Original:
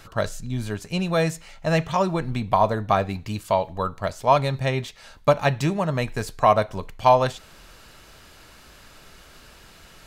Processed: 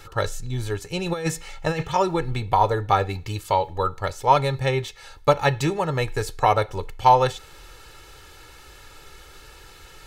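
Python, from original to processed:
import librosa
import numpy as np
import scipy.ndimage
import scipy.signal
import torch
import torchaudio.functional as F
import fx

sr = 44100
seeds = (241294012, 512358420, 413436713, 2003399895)

y = x + 0.73 * np.pad(x, (int(2.3 * sr / 1000.0), 0))[:len(x)]
y = fx.over_compress(y, sr, threshold_db=-23.0, ratio=-0.5, at=(1.06, 1.83))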